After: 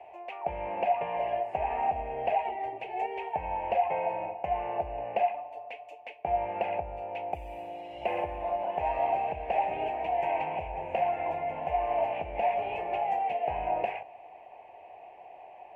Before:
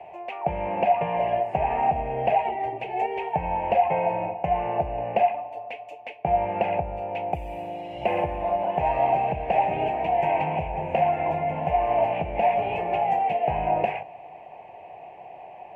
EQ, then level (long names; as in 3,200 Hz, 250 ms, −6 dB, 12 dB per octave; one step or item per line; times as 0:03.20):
parametric band 150 Hz −11.5 dB 1.3 octaves
−5.5 dB